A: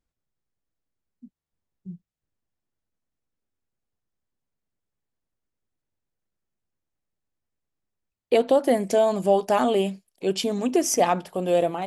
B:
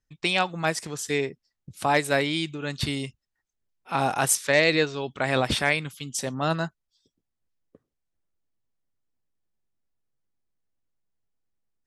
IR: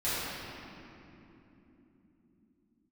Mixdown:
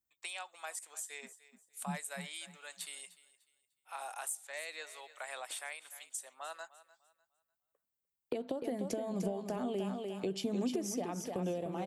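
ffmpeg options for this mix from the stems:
-filter_complex "[0:a]agate=range=0.282:threshold=0.00891:ratio=16:detection=peak,highpass=62,acompressor=threshold=0.0447:ratio=6,volume=0.841,asplit=2[s0][s1];[s1]volume=0.422[s2];[1:a]highpass=f=630:w=0.5412,highpass=f=630:w=1.3066,equalizer=f=11000:w=2.4:g=-10.5,aexciter=amount=9.3:drive=6.1:freq=7500,volume=0.2,asplit=2[s3][s4];[s4]volume=0.1[s5];[s2][s5]amix=inputs=2:normalize=0,aecho=0:1:299|598|897|1196:1|0.27|0.0729|0.0197[s6];[s0][s3][s6]amix=inputs=3:normalize=0,acrossover=split=310[s7][s8];[s8]acompressor=threshold=0.01:ratio=4[s9];[s7][s9]amix=inputs=2:normalize=0"

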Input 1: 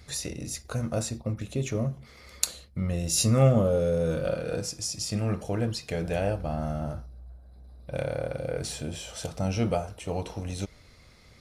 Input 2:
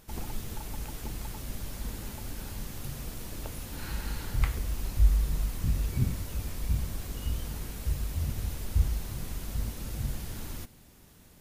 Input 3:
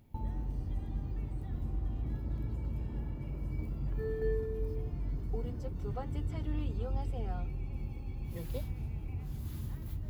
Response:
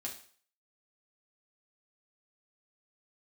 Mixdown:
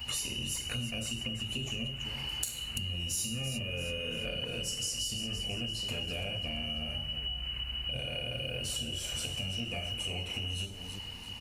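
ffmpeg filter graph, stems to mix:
-filter_complex "[0:a]lowshelf=f=310:g=10.5,acompressor=threshold=0.0562:ratio=6,aemphasis=mode=production:type=75kf,volume=1.12,asplit=3[s0][s1][s2];[s1]volume=0.668[s3];[s2]volume=0.133[s4];[1:a]volume=1.26,asplit=2[s5][s6];[s6]volume=0.0708[s7];[2:a]volume=0.355[s8];[s0][s5]amix=inputs=2:normalize=0,lowpass=f=2600:t=q:w=0.5098,lowpass=f=2600:t=q:w=0.6013,lowpass=f=2600:t=q:w=0.9,lowpass=f=2600:t=q:w=2.563,afreqshift=-3000,acompressor=threshold=0.0355:ratio=6,volume=1[s9];[3:a]atrim=start_sample=2205[s10];[s3][s10]afir=irnorm=-1:irlink=0[s11];[s4][s7]amix=inputs=2:normalize=0,aecho=0:1:338|676|1014|1352|1690|2028:1|0.41|0.168|0.0689|0.0283|0.0116[s12];[s8][s9][s11][s12]amix=inputs=4:normalize=0,acompressor=threshold=0.0178:ratio=3"

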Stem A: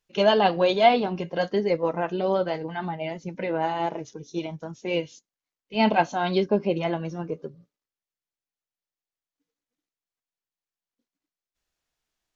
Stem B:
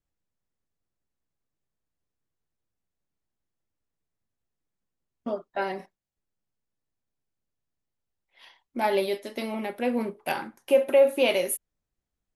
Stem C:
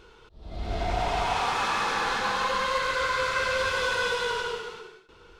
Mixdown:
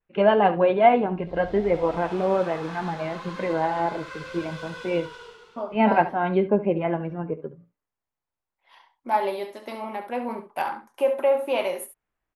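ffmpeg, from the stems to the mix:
-filter_complex "[0:a]lowpass=f=2300:w=0.5412,lowpass=f=2300:w=1.3066,volume=1.19,asplit=2[s0][s1];[s1]volume=0.178[s2];[1:a]equalizer=f=980:w=1.1:g=13.5,adelay=300,volume=0.447,asplit=2[s3][s4];[s4]volume=0.299[s5];[2:a]adelay=750,volume=0.237[s6];[s2][s5]amix=inputs=2:normalize=0,aecho=0:1:70:1[s7];[s0][s3][s6][s7]amix=inputs=4:normalize=0,adynamicequalizer=threshold=0.00501:dfrequency=6100:dqfactor=0.78:tfrequency=6100:tqfactor=0.78:attack=5:release=100:ratio=0.375:range=2.5:mode=cutabove:tftype=bell"

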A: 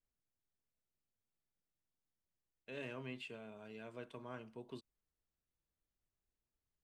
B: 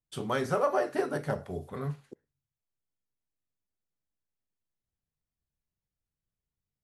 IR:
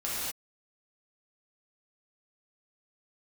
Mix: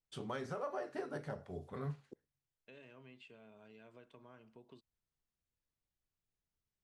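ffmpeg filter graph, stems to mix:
-filter_complex "[0:a]acompressor=threshold=0.00282:ratio=4,volume=0.631[s0];[1:a]volume=0.473[s1];[s0][s1]amix=inputs=2:normalize=0,lowpass=7300,alimiter=level_in=2.11:limit=0.0631:level=0:latency=1:release=442,volume=0.473"

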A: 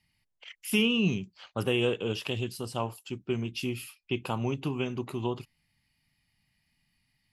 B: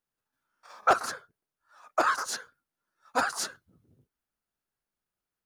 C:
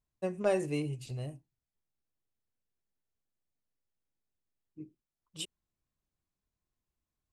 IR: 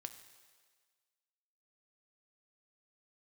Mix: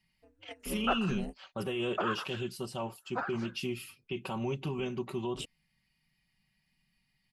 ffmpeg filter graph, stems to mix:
-filter_complex "[0:a]aecho=1:1:5.3:0.62,volume=0.708,asplit=2[s0][s1];[1:a]lowpass=2100,volume=0.398[s2];[2:a]alimiter=level_in=1.06:limit=0.0631:level=0:latency=1:release=191,volume=0.944,aeval=exprs='val(0)*sin(2*PI*110*n/s)':c=same,volume=1.33[s3];[s1]apad=whole_len=323133[s4];[s3][s4]sidechaingate=range=0.0398:threshold=0.00631:ratio=16:detection=peak[s5];[s0][s5]amix=inputs=2:normalize=0,alimiter=level_in=1.12:limit=0.0631:level=0:latency=1:release=18,volume=0.891,volume=1[s6];[s2][s6]amix=inputs=2:normalize=0,highshelf=f=7100:g=-4.5"

